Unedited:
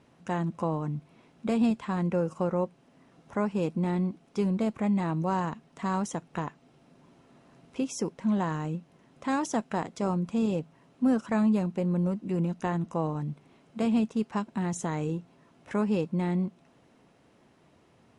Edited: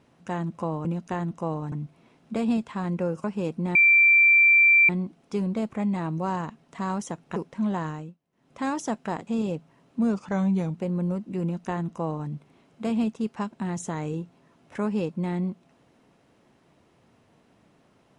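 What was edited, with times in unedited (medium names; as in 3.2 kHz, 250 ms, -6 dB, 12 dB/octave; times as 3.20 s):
2.37–3.42 s: delete
3.93 s: add tone 2.35 kHz -13.5 dBFS 1.14 s
6.40–8.02 s: delete
8.54–9.26 s: dip -21.5 dB, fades 0.29 s
9.93–10.31 s: delete
11.03–11.70 s: speed 89%
12.38–13.25 s: copy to 0.85 s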